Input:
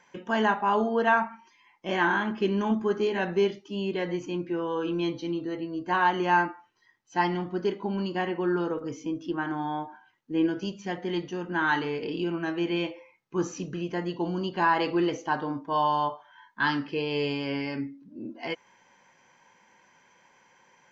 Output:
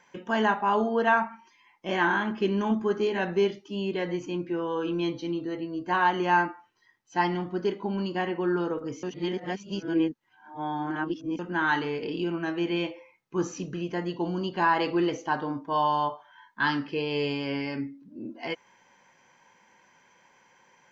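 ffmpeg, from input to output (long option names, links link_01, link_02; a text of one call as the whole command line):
ffmpeg -i in.wav -filter_complex "[0:a]asplit=3[link_01][link_02][link_03];[link_01]atrim=end=9.032[link_04];[link_02]atrim=start=9.028:end=11.392,asetpts=PTS-STARTPTS,areverse[link_05];[link_03]atrim=start=11.388[link_06];[link_04][link_05]acrossfade=duration=0.004:curve1=hsin:curve2=hsin[link_07];[link_07][link_06]acrossfade=duration=0.004:curve1=hsin:curve2=hsin" out.wav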